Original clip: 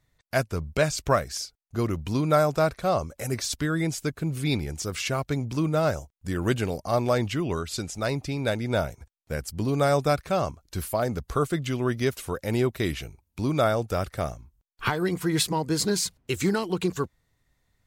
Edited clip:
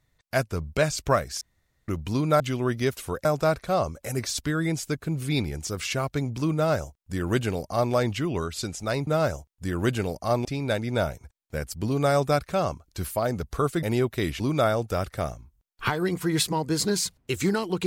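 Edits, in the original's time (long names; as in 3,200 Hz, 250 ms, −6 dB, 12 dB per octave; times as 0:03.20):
0:01.41–0:01.88: fill with room tone
0:05.70–0:07.08: duplicate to 0:08.22
0:11.60–0:12.45: move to 0:02.40
0:13.02–0:13.40: remove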